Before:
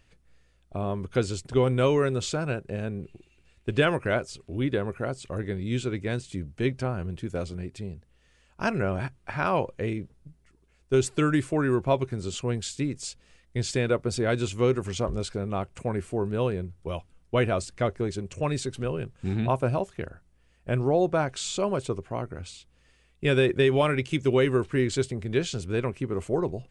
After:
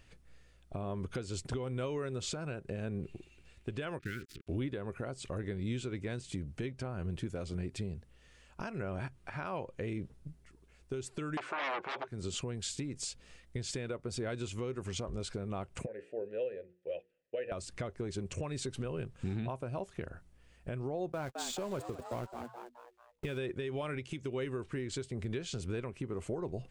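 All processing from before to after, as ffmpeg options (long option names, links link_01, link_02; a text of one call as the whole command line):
ffmpeg -i in.wav -filter_complex "[0:a]asettb=1/sr,asplit=3[link_01][link_02][link_03];[link_01]atrim=end=3.994[link_04];[link_02]atrim=start=3.99:end=4.47,asetpts=PTS-STARTPTS,afade=type=in:duration=0.004:curve=qsin,afade=type=out:start_time=0.476:duration=0.004:curve=qsin,adynamicsmooth=sensitivity=5:basefreq=2400,acrusher=bits=6:mix=0:aa=0.5,asuperstop=centerf=750:order=8:qfactor=0.7[link_05];[link_03]atrim=start=4.466[link_06];[link_04][link_05]acrossfade=duration=0.004:curve1=hsin:curve2=qsin[link_07];[link_07][link_06]acrossfade=duration=0.004:curve1=qsin:curve2=hsin,asettb=1/sr,asplit=3[link_08][link_09][link_10];[link_08]atrim=end=11.374[link_11];[link_09]atrim=start=11.37:end=12.08,asetpts=PTS-STARTPTS,afade=type=in:duration=0.004:curve=qsin,afade=type=out:start_time=0.706:duration=0.004:curve=qsin,equalizer=frequency=1500:width=5.5:gain=6,aeval=exprs='0.299*sin(PI/2*6.31*val(0)/0.299)':channel_layout=same,highpass=570,lowpass=2900[link_12];[link_10]atrim=start=12.076[link_13];[link_11][link_12]acrossfade=duration=0.004:curve1=hsin:curve2=qsin[link_14];[link_14][link_13]acrossfade=duration=0.004:curve1=qsin:curve2=hsin,asettb=1/sr,asplit=3[link_15][link_16][link_17];[link_15]atrim=end=15.864[link_18];[link_16]atrim=start=15.86:end=17.52,asetpts=PTS-STARTPTS,afade=type=in:duration=0.004:curve=qsin,afade=type=out:start_time=1.656:duration=0.004:curve=qsin,asplit=3[link_19][link_20][link_21];[link_19]bandpass=frequency=530:width_type=q:width=8,volume=0dB[link_22];[link_20]bandpass=frequency=1840:width_type=q:width=8,volume=-6dB[link_23];[link_21]bandpass=frequency=2480:width_type=q:width=8,volume=-9dB[link_24];[link_22][link_23][link_24]amix=inputs=3:normalize=0,bandreject=frequency=60:width_type=h:width=6,bandreject=frequency=120:width_type=h:width=6,bandreject=frequency=180:width_type=h:width=6,bandreject=frequency=240:width_type=h:width=6,bandreject=frequency=300:width_type=h:width=6,bandreject=frequency=360:width_type=h:width=6,bandreject=frequency=420:width_type=h:width=6,bandreject=frequency=480:width_type=h:width=6[link_25];[link_17]atrim=start=17.516[link_26];[link_18][link_25]acrossfade=duration=0.004:curve1=hsin:curve2=qsin[link_27];[link_27][link_26]acrossfade=duration=0.004:curve1=qsin:curve2=hsin,asettb=1/sr,asplit=3[link_28][link_29][link_30];[link_28]atrim=end=21.124[link_31];[link_29]atrim=start=21.12:end=23.38,asetpts=PTS-STARTPTS,afade=type=in:duration=0.004:curve=qsin,afade=type=out:start_time=2.256:duration=0.004:curve=qsin,aeval=exprs='val(0)+0.5*0.0224*sgn(val(0))':channel_layout=same,agate=range=-49dB:threshold=-30dB:ratio=16:release=100:detection=peak,asplit=5[link_32][link_33][link_34][link_35][link_36];[link_33]adelay=214,afreqshift=120,volume=-15dB[link_37];[link_34]adelay=428,afreqshift=240,volume=-21.6dB[link_38];[link_35]adelay=642,afreqshift=360,volume=-28.1dB[link_39];[link_36]adelay=856,afreqshift=480,volume=-34.7dB[link_40];[link_32][link_37][link_38][link_39][link_40]amix=inputs=5:normalize=0,atrim=end_sample=99666[link_41];[link_30]atrim=start=23.376[link_42];[link_31][link_41]acrossfade=duration=0.004:curve1=hsin:curve2=qsin[link_43];[link_43][link_42]acrossfade=duration=0.004:curve1=qsin:curve2=hsin,acompressor=threshold=-33dB:ratio=10,alimiter=level_in=5dB:limit=-24dB:level=0:latency=1:release=217,volume=-5dB,volume=1.5dB" out.wav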